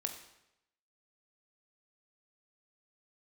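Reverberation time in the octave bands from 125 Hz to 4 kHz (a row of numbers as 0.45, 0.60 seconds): 0.90, 0.80, 0.90, 0.85, 0.80, 0.75 seconds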